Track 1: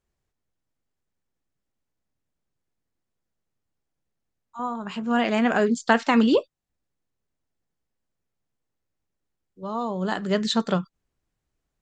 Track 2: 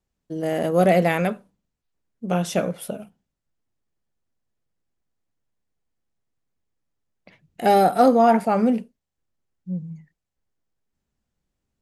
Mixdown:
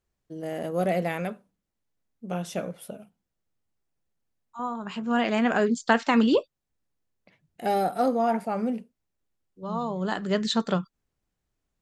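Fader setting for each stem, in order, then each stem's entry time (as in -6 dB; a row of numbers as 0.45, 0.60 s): -2.0, -8.5 dB; 0.00, 0.00 s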